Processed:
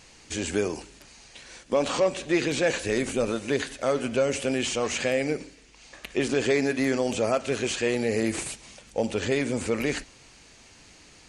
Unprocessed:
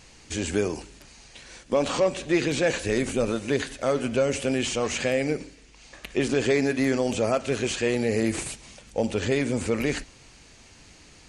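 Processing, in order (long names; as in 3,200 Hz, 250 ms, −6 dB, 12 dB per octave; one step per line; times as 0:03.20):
low-shelf EQ 180 Hz −5.5 dB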